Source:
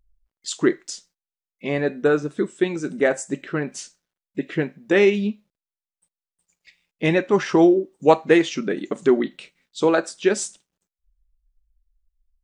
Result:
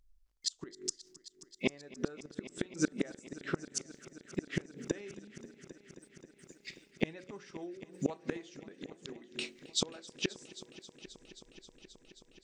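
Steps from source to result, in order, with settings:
parametric band 5,500 Hz +7 dB 1.2 octaves
hum removal 46.14 Hz, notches 12
gate with flip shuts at −17 dBFS, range −32 dB
speech leveller within 5 dB 2 s
on a send: echo machine with several playback heads 266 ms, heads all three, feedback 71%, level −21.5 dB

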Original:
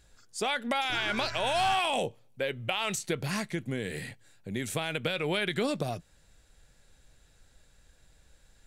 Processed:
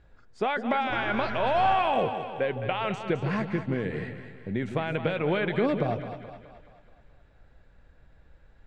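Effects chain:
low-pass filter 1,700 Hz 12 dB per octave
echo with a time of its own for lows and highs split 580 Hz, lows 156 ms, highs 213 ms, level −9 dB
level +4.5 dB

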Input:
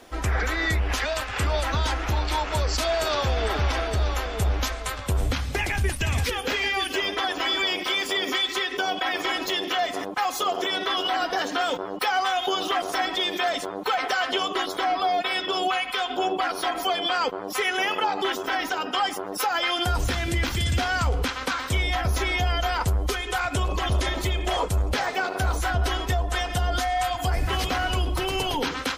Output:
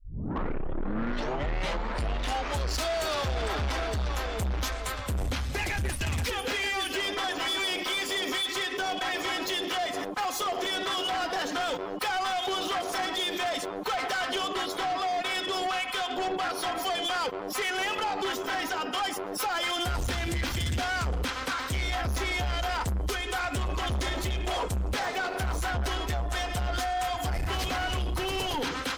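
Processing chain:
turntable start at the beginning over 2.74 s
soft clipping −26 dBFS, distortion −10 dB

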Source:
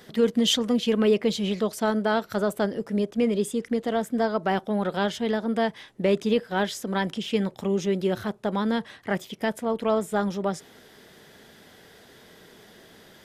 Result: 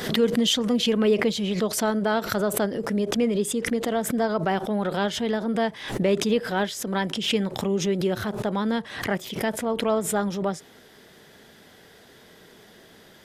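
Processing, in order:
background raised ahead of every attack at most 77 dB per second

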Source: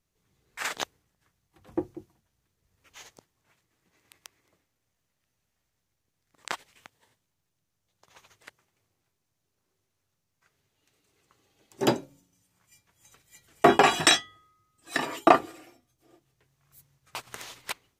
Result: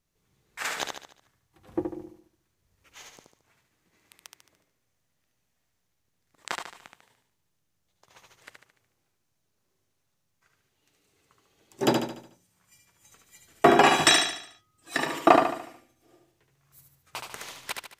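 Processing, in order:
repeating echo 73 ms, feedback 45%, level −4.5 dB

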